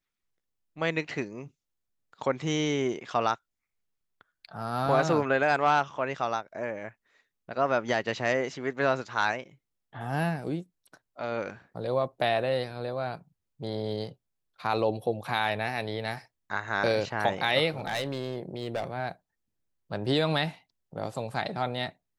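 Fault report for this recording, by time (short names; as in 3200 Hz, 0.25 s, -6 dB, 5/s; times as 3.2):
17.77–18.84 clipped -25.5 dBFS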